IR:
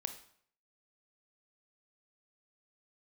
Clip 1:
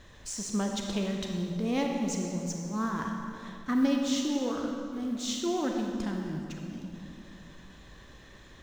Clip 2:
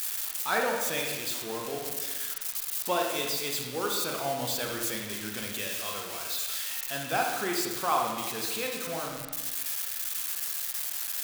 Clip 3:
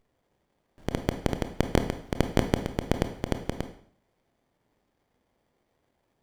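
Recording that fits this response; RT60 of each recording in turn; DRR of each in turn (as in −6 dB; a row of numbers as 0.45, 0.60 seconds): 3; 2.5, 1.3, 0.60 seconds; 1.5, 0.5, 7.5 decibels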